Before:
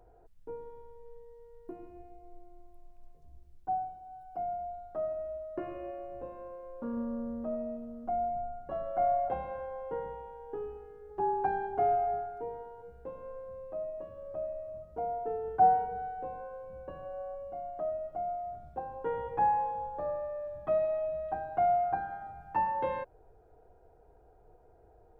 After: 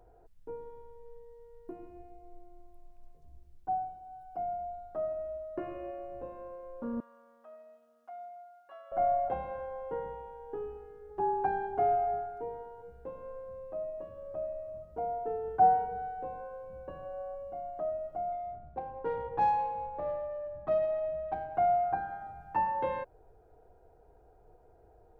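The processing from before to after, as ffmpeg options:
-filter_complex "[0:a]asettb=1/sr,asplit=3[s0][s1][s2];[s0]atrim=end=7.004[s3];[s1]atrim=start=7:end=8.92,asetpts=PTS-STARTPTS,afade=t=in:d=0.004:c=qsin,afade=t=out:st=1.916:d=0.004:c=qsin,highpass=1500[s4];[s2]atrim=start=8.916[s5];[s3][s4]acrossfade=d=0.004:c1=hsin:c2=qsin[s6];[s6][s5]acrossfade=d=0.004:c1=qsin:c2=hsin,asettb=1/sr,asplit=3[s7][s8][s9];[s7]atrim=end=18.324[s10];[s8]atrim=start=18.32:end=21.55,asetpts=PTS-STARTPTS,afade=t=in:d=0.004:c=qsin,afade=t=out:st=3.226:d=0.004:c=qsin,adynamicsmooth=sensitivity=4:basefreq=2300[s11];[s9]atrim=start=21.546[s12];[s10][s11]acrossfade=d=0.004:c1=hsin:c2=qsin[s13];[s13][s12]acrossfade=d=0.004:c1=qsin:c2=hsin"

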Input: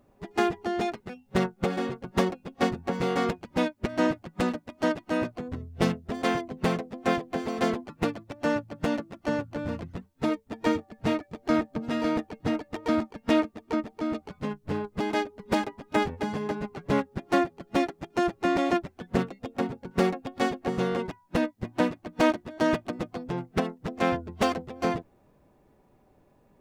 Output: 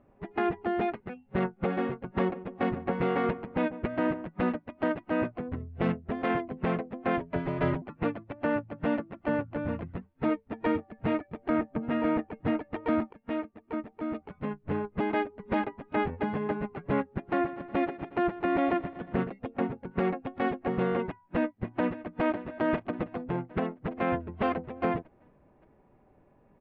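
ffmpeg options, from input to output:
-filter_complex "[0:a]asplit=3[s0][s1][s2];[s0]afade=t=out:st=2.34:d=0.02[s3];[s1]asplit=2[s4][s5];[s5]adelay=144,lowpass=f=1100:p=1,volume=0.168,asplit=2[s6][s7];[s7]adelay=144,lowpass=f=1100:p=1,volume=0.52,asplit=2[s8][s9];[s9]adelay=144,lowpass=f=1100:p=1,volume=0.52,asplit=2[s10][s11];[s11]adelay=144,lowpass=f=1100:p=1,volume=0.52,asplit=2[s12][s13];[s13]adelay=144,lowpass=f=1100:p=1,volume=0.52[s14];[s4][s6][s8][s10][s12][s14]amix=inputs=6:normalize=0,afade=t=in:st=2.34:d=0.02,afade=t=out:st=4.27:d=0.02[s15];[s2]afade=t=in:st=4.27:d=0.02[s16];[s3][s15][s16]amix=inputs=3:normalize=0,asettb=1/sr,asplit=3[s17][s18][s19];[s17]atrim=end=7.204[s20];[s18]atrim=start=7.2:end=7.82,asetpts=PTS-STARTPTS,afade=t=in:d=0.004:c=qsin,afade=t=out:st=0.616:d=0.004:c=qsin,afreqshift=-86[s21];[s19]atrim=start=7.816[s22];[s20][s21]acrossfade=d=0.004:c1=hsin:c2=qsin[s23];[s23][s22]acrossfade=d=0.004:c1=qsin:c2=hsin,asettb=1/sr,asplit=3[s24][s25][s26];[s24]atrim=end=11.504[s27];[s25]atrim=start=11.5:end=12.45,asetpts=PTS-STARTPTS,afade=t=in:d=0.004:c=qsin,afade=t=out:st=0.946:d=0.004:c=qsin,equalizer=f=4300:w=1.5:g=-4.5[s28];[s26]atrim=start=12.446[s29];[s27][s28]acrossfade=d=0.004:c1=hsin:c2=qsin[s30];[s30][s29]acrossfade=d=0.004:c1=qsin:c2=hsin,asettb=1/sr,asplit=3[s31][s32][s33];[s31]atrim=end=17.114[s34];[s32]atrim=start=17.11:end=19.3,asetpts=PTS-STARTPTS,afade=t=in:d=0.004:c=qsin,afade=t=out:st=2.186:d=0.004:c=qsin,aecho=1:1:120|240|360|480|600:0.141|0.0819|0.0475|0.0276|0.016,atrim=end_sample=96579[s35];[s33]atrim=start=19.296[s36];[s34][s35]acrossfade=d=0.004:c1=hsin:c2=qsin[s37];[s37][s36]acrossfade=d=0.004:c1=qsin:c2=hsin,asplit=2[s38][s39];[s39]afade=t=in:st=21.08:d=0.01,afade=t=out:st=22.22:d=0.01,aecho=0:1:570|1140|1710|2280|2850|3420:0.133352|0.0800113|0.0480068|0.0288041|0.0172824|0.0103695[s40];[s38][s40]amix=inputs=2:normalize=0,asplit=2[s41][s42];[s41]atrim=end=13.13,asetpts=PTS-STARTPTS,afade=t=out:st=13.126:d=0.004:c=hsin:silence=0.223872[s43];[s42]atrim=start=13.13,asetpts=PTS-STARTPTS,afade=t=in:d=1.75:silence=0.223872[s44];[s43][s44]concat=n=2:v=0:a=1,lowpass=f=2600:w=0.5412,lowpass=f=2600:w=1.3066,alimiter=limit=0.126:level=0:latency=1:release=22"

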